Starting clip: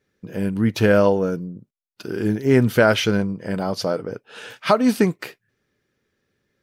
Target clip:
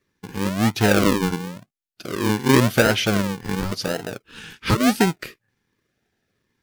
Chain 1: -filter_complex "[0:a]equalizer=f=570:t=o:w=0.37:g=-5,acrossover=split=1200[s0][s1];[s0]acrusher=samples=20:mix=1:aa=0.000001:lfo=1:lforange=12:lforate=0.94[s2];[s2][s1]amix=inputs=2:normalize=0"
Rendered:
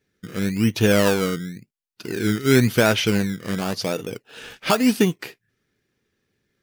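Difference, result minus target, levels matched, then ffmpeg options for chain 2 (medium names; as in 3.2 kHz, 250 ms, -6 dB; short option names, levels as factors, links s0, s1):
decimation with a swept rate: distortion -12 dB
-filter_complex "[0:a]equalizer=f=570:t=o:w=0.37:g=-5,acrossover=split=1200[s0][s1];[s0]acrusher=samples=54:mix=1:aa=0.000001:lfo=1:lforange=32.4:lforate=0.94[s2];[s2][s1]amix=inputs=2:normalize=0"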